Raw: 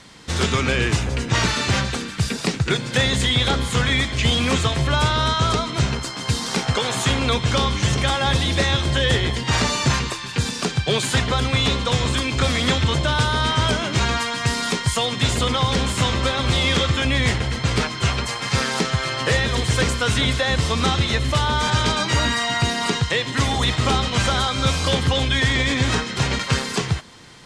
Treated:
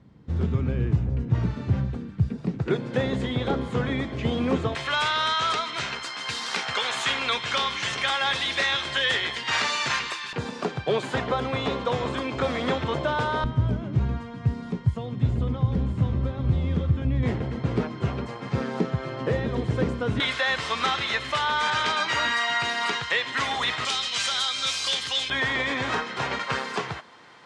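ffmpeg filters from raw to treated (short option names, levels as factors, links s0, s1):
-af "asetnsamples=n=441:p=0,asendcmd='2.59 bandpass f 360;4.75 bandpass f 2000;10.33 bandpass f 590;13.44 bandpass f 110;17.23 bandpass f 280;20.2 bandpass f 1600;23.85 bandpass f 4400;25.3 bandpass f 1000',bandpass=f=110:t=q:w=0.75:csg=0"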